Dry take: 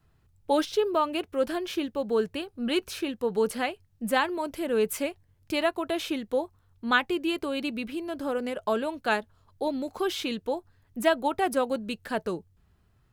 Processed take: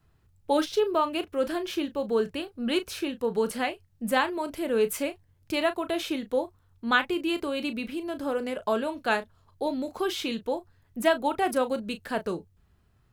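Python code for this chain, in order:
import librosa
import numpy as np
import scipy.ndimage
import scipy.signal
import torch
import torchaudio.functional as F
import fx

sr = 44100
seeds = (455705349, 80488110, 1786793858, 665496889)

y = fx.doubler(x, sr, ms=35.0, db=-11.5)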